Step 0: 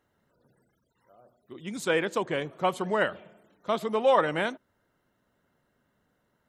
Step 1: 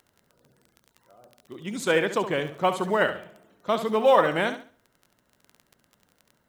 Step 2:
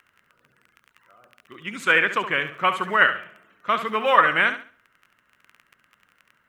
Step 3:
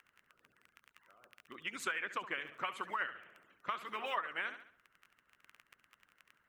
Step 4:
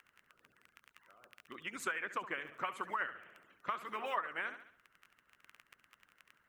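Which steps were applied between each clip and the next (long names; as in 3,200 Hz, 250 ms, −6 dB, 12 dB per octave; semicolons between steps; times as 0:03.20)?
surface crackle 16 per second −39 dBFS; flutter between parallel walls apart 11.8 metres, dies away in 0.39 s; log-companded quantiser 8 bits; level +3 dB
flat-topped bell 1,800 Hz +14.5 dB; level −4.5 dB
harmonic and percussive parts rebalanced harmonic −16 dB; downward compressor 5 to 1, threshold −32 dBFS, peak gain reduction 18.5 dB; level −4 dB
dynamic equaliser 3,500 Hz, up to −7 dB, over −55 dBFS, Q 1; level +1.5 dB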